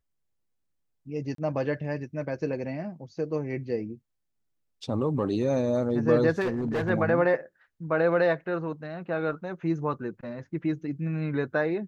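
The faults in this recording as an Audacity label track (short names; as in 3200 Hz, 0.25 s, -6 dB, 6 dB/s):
1.350000	1.380000	gap 33 ms
6.400000	6.900000	clipped -24 dBFS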